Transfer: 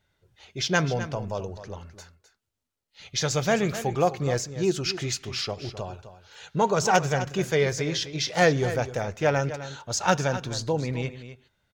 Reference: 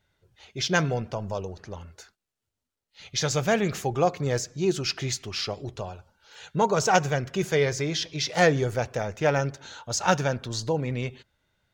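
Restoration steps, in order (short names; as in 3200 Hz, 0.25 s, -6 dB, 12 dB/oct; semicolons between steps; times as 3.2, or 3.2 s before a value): clip repair -8 dBFS; inverse comb 0.258 s -12.5 dB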